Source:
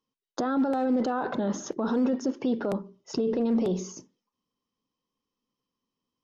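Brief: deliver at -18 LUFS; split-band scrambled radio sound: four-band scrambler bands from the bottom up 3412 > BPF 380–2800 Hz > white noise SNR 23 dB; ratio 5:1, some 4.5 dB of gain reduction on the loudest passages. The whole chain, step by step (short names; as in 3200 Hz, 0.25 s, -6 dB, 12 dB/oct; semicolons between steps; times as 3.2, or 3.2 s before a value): compressor 5:1, threshold -26 dBFS; four-band scrambler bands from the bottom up 3412; BPF 380–2800 Hz; white noise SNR 23 dB; gain +14.5 dB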